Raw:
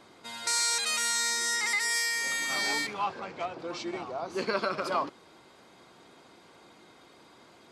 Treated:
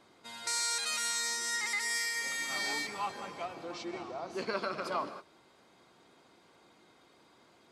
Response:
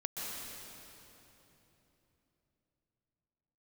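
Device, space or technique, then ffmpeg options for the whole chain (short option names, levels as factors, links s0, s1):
keyed gated reverb: -filter_complex "[0:a]asplit=3[s0][s1][s2];[1:a]atrim=start_sample=2205[s3];[s1][s3]afir=irnorm=-1:irlink=0[s4];[s2]apad=whole_len=340251[s5];[s4][s5]sidechaingate=range=0.0224:threshold=0.00447:ratio=16:detection=peak,volume=0.316[s6];[s0][s6]amix=inputs=2:normalize=0,volume=0.447"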